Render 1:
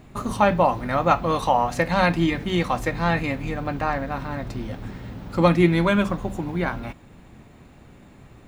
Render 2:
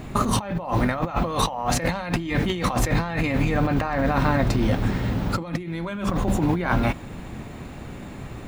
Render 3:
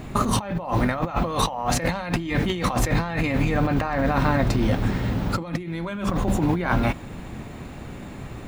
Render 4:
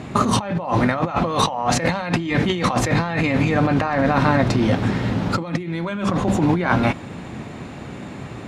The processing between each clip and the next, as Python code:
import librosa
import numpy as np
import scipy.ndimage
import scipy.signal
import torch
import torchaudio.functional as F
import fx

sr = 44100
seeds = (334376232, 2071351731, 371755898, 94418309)

y1 = fx.over_compress(x, sr, threshold_db=-30.0, ratio=-1.0)
y1 = y1 * 10.0 ** (5.5 / 20.0)
y2 = y1
y3 = fx.bandpass_edges(y2, sr, low_hz=100.0, high_hz=7900.0)
y3 = y3 * 10.0 ** (4.5 / 20.0)